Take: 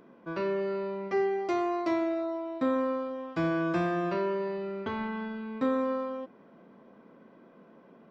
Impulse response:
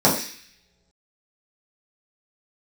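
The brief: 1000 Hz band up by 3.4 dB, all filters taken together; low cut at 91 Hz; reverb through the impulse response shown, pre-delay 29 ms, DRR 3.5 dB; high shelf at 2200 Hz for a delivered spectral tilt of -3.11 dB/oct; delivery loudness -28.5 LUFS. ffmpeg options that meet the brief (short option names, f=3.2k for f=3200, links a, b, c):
-filter_complex "[0:a]highpass=91,equalizer=f=1k:t=o:g=5.5,highshelf=f=2.2k:g=-6,asplit=2[a][b];[1:a]atrim=start_sample=2205,adelay=29[c];[b][c]afir=irnorm=-1:irlink=0,volume=-24dB[d];[a][d]amix=inputs=2:normalize=0,volume=-2.5dB"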